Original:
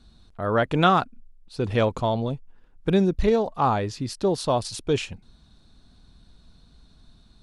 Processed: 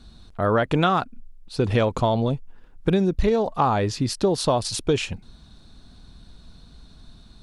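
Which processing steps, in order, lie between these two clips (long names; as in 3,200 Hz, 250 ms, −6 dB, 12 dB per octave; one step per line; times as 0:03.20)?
downward compressor 6 to 1, threshold −23 dBFS, peak gain reduction 9.5 dB
level +6.5 dB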